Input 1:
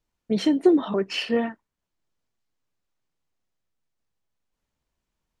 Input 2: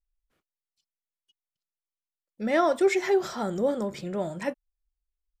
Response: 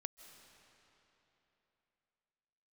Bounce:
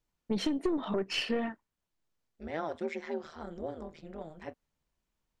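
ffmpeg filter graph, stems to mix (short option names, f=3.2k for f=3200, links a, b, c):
-filter_complex "[0:a]aeval=exprs='(tanh(6.31*val(0)+0.4)-tanh(0.4))/6.31':c=same,volume=-1.5dB[a];[1:a]lowpass=4.4k,acontrast=35,tremolo=f=160:d=0.947,volume=-14.5dB[b];[a][b]amix=inputs=2:normalize=0,acompressor=threshold=-27dB:ratio=6"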